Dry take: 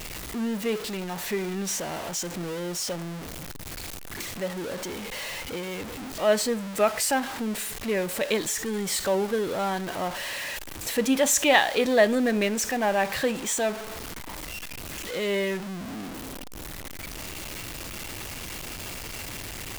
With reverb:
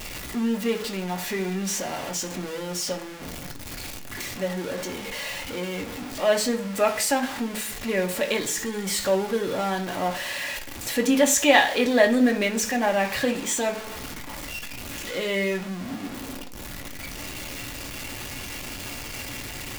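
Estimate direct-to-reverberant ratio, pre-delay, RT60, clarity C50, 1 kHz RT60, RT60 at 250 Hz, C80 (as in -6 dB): 2.0 dB, 3 ms, 0.45 s, 14.0 dB, 0.40 s, 0.65 s, 18.5 dB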